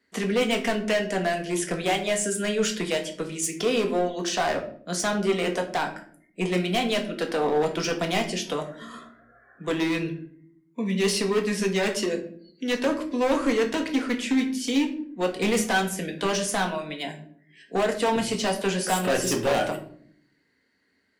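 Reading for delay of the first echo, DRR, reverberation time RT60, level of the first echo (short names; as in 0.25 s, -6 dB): none, 3.0 dB, 0.60 s, none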